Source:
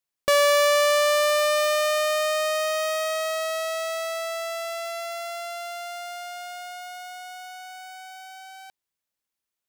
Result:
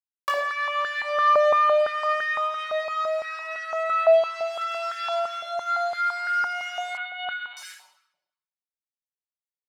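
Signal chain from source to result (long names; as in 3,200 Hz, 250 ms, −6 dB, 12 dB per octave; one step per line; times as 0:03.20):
0:04.61–0:05.20: high-shelf EQ 2,600 Hz +5 dB
bit-depth reduction 6 bits, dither none
bad sample-rate conversion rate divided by 2×, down none, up zero stuff
downward compressor 2.5 to 1, threshold −24 dBFS, peak gain reduction 8.5 dB
treble cut that deepens with the level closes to 2,500 Hz, closed at −24 dBFS
convolution reverb RT60 0.85 s, pre-delay 5 ms, DRR −2.5 dB
0:06.97–0:07.57: linear-prediction vocoder at 8 kHz pitch kept
high-pass on a step sequencer 5.9 Hz 670–1,600 Hz
level −3 dB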